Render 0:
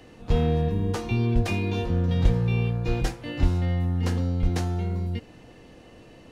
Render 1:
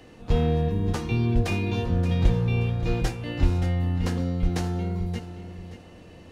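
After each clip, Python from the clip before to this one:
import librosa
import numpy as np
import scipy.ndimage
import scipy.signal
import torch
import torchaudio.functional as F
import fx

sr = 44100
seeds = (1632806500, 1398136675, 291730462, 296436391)

y = fx.echo_feedback(x, sr, ms=576, feedback_pct=25, wet_db=-11.5)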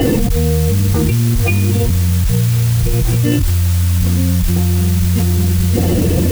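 y = fx.spec_expand(x, sr, power=2.0)
y = fx.mod_noise(y, sr, seeds[0], snr_db=15)
y = fx.env_flatten(y, sr, amount_pct=100)
y = y * 10.0 ** (1.5 / 20.0)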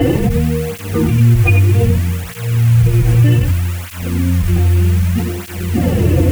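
y = fx.high_shelf_res(x, sr, hz=3200.0, db=-6.5, q=1.5)
y = y + 10.0 ** (-6.0 / 20.0) * np.pad(y, (int(94 * sr / 1000.0), 0))[:len(y)]
y = fx.flanger_cancel(y, sr, hz=0.64, depth_ms=5.2)
y = y * 10.0 ** (2.5 / 20.0)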